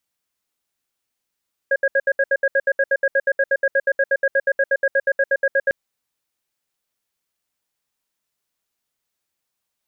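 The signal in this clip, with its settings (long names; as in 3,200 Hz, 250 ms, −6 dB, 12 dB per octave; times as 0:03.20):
tone pair in a cadence 548 Hz, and 1,640 Hz, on 0.05 s, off 0.07 s, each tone −16.5 dBFS 4.00 s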